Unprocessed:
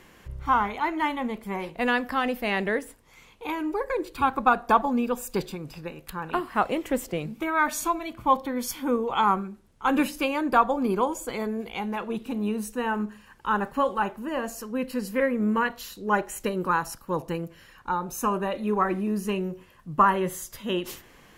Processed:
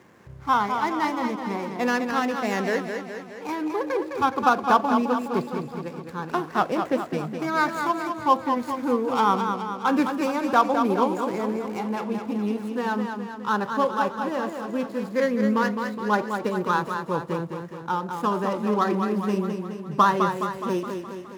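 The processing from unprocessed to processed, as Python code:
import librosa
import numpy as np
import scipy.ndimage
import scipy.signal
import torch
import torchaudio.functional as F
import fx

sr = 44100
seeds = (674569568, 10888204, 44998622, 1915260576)

y = scipy.ndimage.median_filter(x, 15, mode='constant')
y = scipy.signal.sosfilt(scipy.signal.butter(4, 92.0, 'highpass', fs=sr, output='sos'), y)
y = fx.echo_warbled(y, sr, ms=209, feedback_pct=58, rate_hz=2.8, cents=70, wet_db=-6.5)
y = F.gain(torch.from_numpy(y), 1.5).numpy()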